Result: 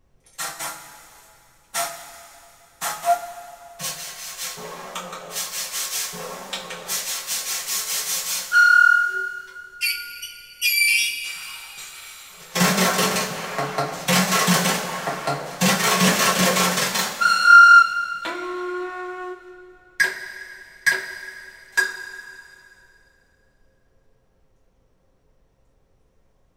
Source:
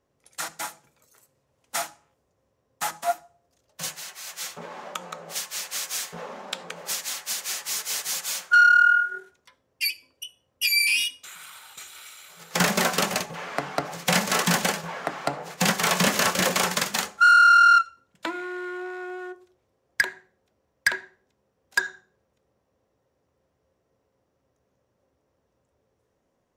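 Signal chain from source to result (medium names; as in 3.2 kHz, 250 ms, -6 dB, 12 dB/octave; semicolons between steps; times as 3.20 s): two-slope reverb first 0.26 s, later 2.7 s, from -18 dB, DRR -7 dB; added noise brown -57 dBFS; trim -4 dB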